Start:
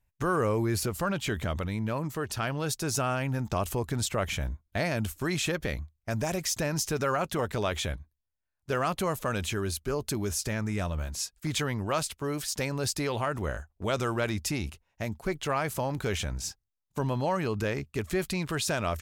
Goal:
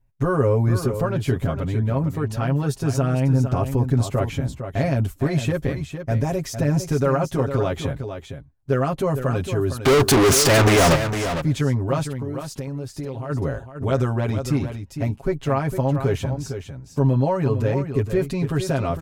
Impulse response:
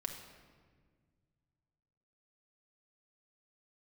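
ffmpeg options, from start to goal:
-filter_complex "[0:a]tiltshelf=f=970:g=7.5,aecho=1:1:7.4:0.96,asplit=3[a][b][c];[a]afade=t=out:st=9.82:d=0.02[d];[b]asplit=2[e][f];[f]highpass=f=720:p=1,volume=43dB,asoftclip=type=tanh:threshold=-8.5dB[g];[e][g]amix=inputs=2:normalize=0,lowpass=f=7.9k:p=1,volume=-6dB,afade=t=in:st=9.82:d=0.02,afade=t=out:st=10.95:d=0.02[h];[c]afade=t=in:st=10.95:d=0.02[i];[d][h][i]amix=inputs=3:normalize=0,asplit=3[j][k][l];[j]afade=t=out:st=12.06:d=0.02[m];[k]acompressor=threshold=-28dB:ratio=6,afade=t=in:st=12.06:d=0.02,afade=t=out:st=13.29:d=0.02[n];[l]afade=t=in:st=13.29:d=0.02[o];[m][n][o]amix=inputs=3:normalize=0,aecho=1:1:456:0.355"

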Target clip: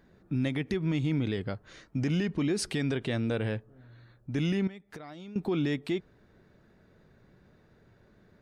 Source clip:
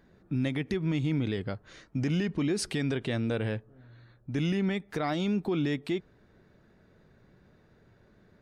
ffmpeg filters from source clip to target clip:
-filter_complex "[0:a]asettb=1/sr,asplit=3[a][b][c];[a]atrim=end=4.674[d];[b]atrim=start=4.67:end=5.36,asetpts=PTS-STARTPTS,afade=t=in:d=0.004:c=qsin,afade=t=out:st=0.686:d=0.004:c=qsin,acompressor=threshold=-41dB:ratio=20[e];[c]atrim=start=5.356[f];[d][e]acrossfade=d=0.004:c1=hsin:c2=qsin[g];[g][f]acrossfade=d=0.004:c1=qsin:c2=hsin"

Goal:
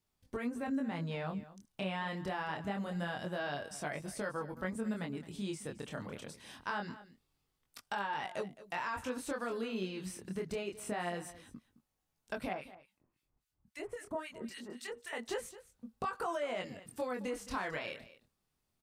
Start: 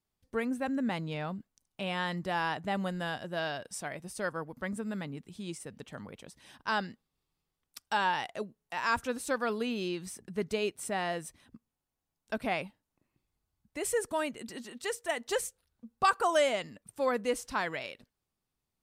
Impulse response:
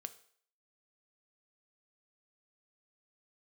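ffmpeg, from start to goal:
-filter_complex "[0:a]acrossover=split=2800[a][b];[b]acompressor=threshold=-46dB:ratio=4:attack=1:release=60[c];[a][c]amix=inputs=2:normalize=0,alimiter=level_in=1.5dB:limit=-24dB:level=0:latency=1:release=64,volume=-1.5dB,acompressor=threshold=-37dB:ratio=6,flanger=delay=20:depth=6.7:speed=0.25,asettb=1/sr,asplit=3[d][e][f];[d]atrim=end=12.534[g];[e]atrim=start=12.53:end=15.13,asetpts=PTS-STARTPTS,afade=t=in:d=0.004:c=qsin,afade=t=out:st=2.596:d=0.004:c=qsin,acrossover=split=1400[h][i];[h]aeval=exprs='val(0)*(1-1/2+1/2*cos(2*PI*3.7*n/s))':c=same[j];[i]aeval=exprs='val(0)*(1-1/2-1/2*cos(2*PI*3.7*n/s))':c=same[k];[j][k]amix=inputs=2:normalize=0[l];[f]atrim=start=15.126[m];[g][l]acrossfade=d=0.004:c1=hsin:c2=qsin[n];[n][m]acrossfade=d=0.004:c1=qsin:c2=hsin,aecho=1:1:216:0.15,volume=6dB"

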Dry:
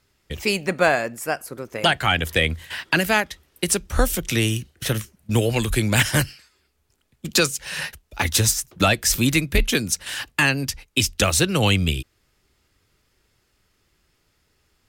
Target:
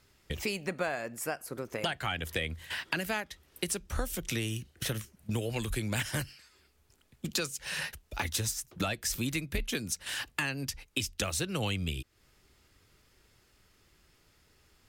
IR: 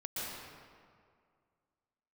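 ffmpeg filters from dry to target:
-af "acompressor=threshold=-36dB:ratio=3,volume=1dB"

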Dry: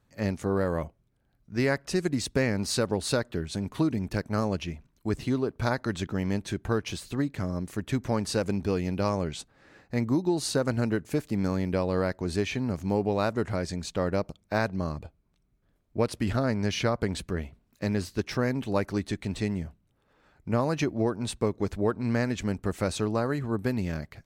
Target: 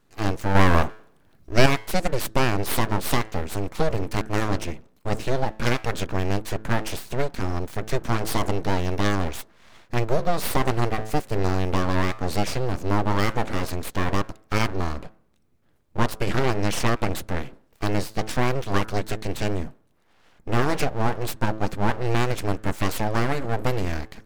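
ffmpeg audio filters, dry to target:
-filter_complex "[0:a]bandreject=f=108.7:t=h:w=4,bandreject=f=217.4:t=h:w=4,bandreject=f=326.1:t=h:w=4,bandreject=f=434.8:t=h:w=4,bandreject=f=543.5:t=h:w=4,bandreject=f=652.2:t=h:w=4,bandreject=f=760.9:t=h:w=4,bandreject=f=869.6:t=h:w=4,bandreject=f=978.3:t=h:w=4,bandreject=f=1.087k:t=h:w=4,bandreject=f=1.1957k:t=h:w=4,bandreject=f=1.3044k:t=h:w=4,bandreject=f=1.4131k:t=h:w=4,bandreject=f=1.5218k:t=h:w=4,bandreject=f=1.6305k:t=h:w=4,aeval=exprs='abs(val(0))':c=same,asettb=1/sr,asplit=3[a][b][c];[a]atrim=end=0.554[d];[b]atrim=start=0.55:end=1.66,asetpts=PTS-STARTPTS,afade=t=in:d=0.004:c=qsin,afade=t=out:st=1.106:d=0.004:c=qsin,acontrast=84[e];[c]atrim=start=1.656[f];[d][e]acrossfade=d=0.004:c1=hsin:c2=qsin[g];[g][f]acrossfade=d=0.004:c1=qsin:c2=hsin,volume=7dB"

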